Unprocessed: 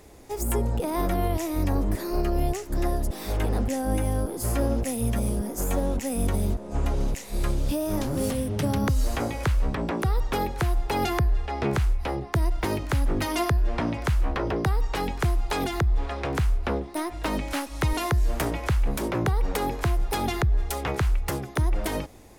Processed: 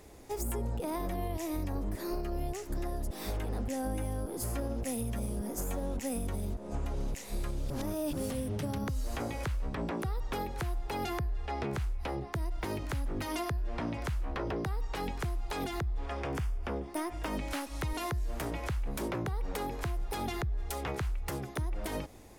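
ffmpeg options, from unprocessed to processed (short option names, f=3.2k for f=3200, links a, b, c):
-filter_complex "[0:a]asettb=1/sr,asplit=3[a][b][c];[a]atrim=end=0.984[d];[b]atrim=start=0.98:end=1.65,asetpts=PTS-STARTPTS,afade=t=in:d=0.004:c=qsin,afade=t=out:st=0.666:d=0.004:c=qsin,bandreject=f=1.4k:w=9.9[e];[c]atrim=start=1.646[f];[d][e]acrossfade=d=0.004:c1=hsin:c2=qsin[g];[g][f]acrossfade=d=0.004:c1=qsin:c2=hsin,asettb=1/sr,asplit=3[h][i][j];[h]atrim=end=16.064[k];[i]atrim=start=16.06:end=17.37,asetpts=PTS-STARTPTS,afade=t=in:d=0.004:c=qsin,afade=t=out:st=1.306:d=0.004:c=qsin,bandreject=f=4k:w=6.7[l];[j]atrim=start=17.366[m];[k][l]acrossfade=d=0.004:c1=hsin:c2=qsin[n];[n][m]acrossfade=d=0.004:c1=qsin:c2=hsin,asplit=3[o][p][q];[o]atrim=end=7.702[r];[p]atrim=start=7.698:end=8.132,asetpts=PTS-STARTPTS,areverse[s];[q]atrim=start=8.128[t];[r][s]acrossfade=d=0.004:c1=hsin:c2=hsin[u];[u][t]acrossfade=d=0.004:c1=hsin:c2=hsin,alimiter=limit=-19.5dB:level=0:latency=1:release=190,acompressor=threshold=-28dB:ratio=2.5,volume=-3.5dB"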